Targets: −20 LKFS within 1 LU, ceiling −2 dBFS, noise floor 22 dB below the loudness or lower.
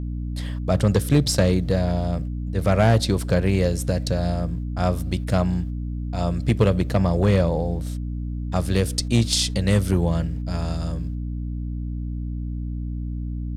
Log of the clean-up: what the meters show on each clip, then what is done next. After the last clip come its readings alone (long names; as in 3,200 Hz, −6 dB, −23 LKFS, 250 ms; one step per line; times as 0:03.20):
share of clipped samples 0.7%; peaks flattened at −9.5 dBFS; mains hum 60 Hz; hum harmonics up to 300 Hz; level of the hum −26 dBFS; integrated loudness −23.0 LKFS; sample peak −9.5 dBFS; target loudness −20.0 LKFS
→ clipped peaks rebuilt −9.5 dBFS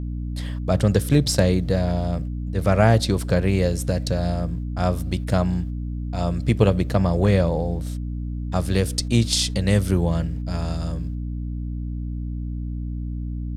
share of clipped samples 0.0%; mains hum 60 Hz; hum harmonics up to 300 Hz; level of the hum −26 dBFS
→ hum removal 60 Hz, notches 5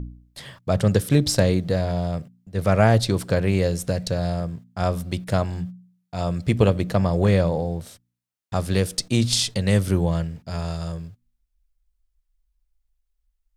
mains hum none found; integrated loudness −23.0 LKFS; sample peak −3.5 dBFS; target loudness −20.0 LKFS
→ level +3 dB
brickwall limiter −2 dBFS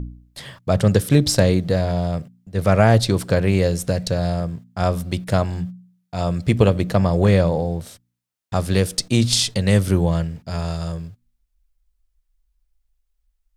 integrated loudness −20.0 LKFS; sample peak −2.0 dBFS; background noise floor −73 dBFS